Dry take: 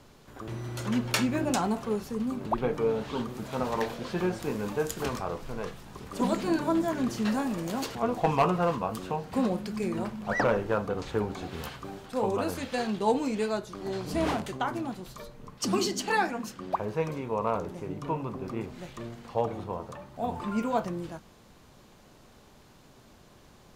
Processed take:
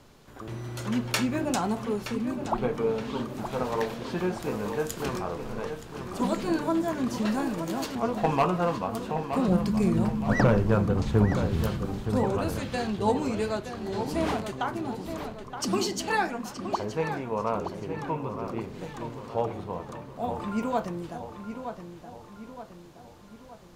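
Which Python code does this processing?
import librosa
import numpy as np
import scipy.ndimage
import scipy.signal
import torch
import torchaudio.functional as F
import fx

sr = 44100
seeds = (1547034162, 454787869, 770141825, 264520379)

y = fx.bass_treble(x, sr, bass_db=14, treble_db=3, at=(9.48, 12.23))
y = fx.echo_filtered(y, sr, ms=921, feedback_pct=49, hz=3900.0, wet_db=-8.5)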